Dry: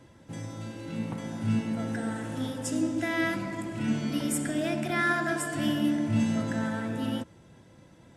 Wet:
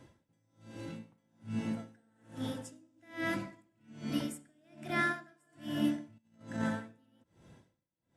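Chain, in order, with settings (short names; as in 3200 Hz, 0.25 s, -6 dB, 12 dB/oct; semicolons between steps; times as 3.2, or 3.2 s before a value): 6.18–6.92 negative-ratio compressor -29 dBFS, ratio -0.5; dB-linear tremolo 1.2 Hz, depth 36 dB; gain -3 dB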